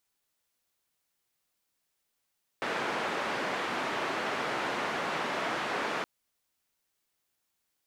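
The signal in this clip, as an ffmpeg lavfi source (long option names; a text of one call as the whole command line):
ffmpeg -f lavfi -i "anoisesrc=color=white:duration=3.42:sample_rate=44100:seed=1,highpass=frequency=230,lowpass=frequency=1600,volume=-16.1dB" out.wav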